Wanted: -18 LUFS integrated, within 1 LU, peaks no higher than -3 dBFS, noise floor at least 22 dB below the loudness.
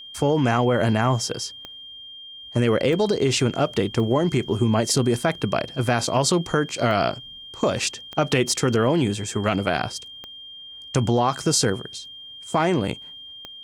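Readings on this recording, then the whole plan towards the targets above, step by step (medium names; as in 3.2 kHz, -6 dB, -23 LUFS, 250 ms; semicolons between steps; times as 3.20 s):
clicks found 7; steady tone 3.2 kHz; tone level -38 dBFS; loudness -22.5 LUFS; peak level -6.5 dBFS; loudness target -18.0 LUFS
-> de-click; band-stop 3.2 kHz, Q 30; trim +4.5 dB; peak limiter -3 dBFS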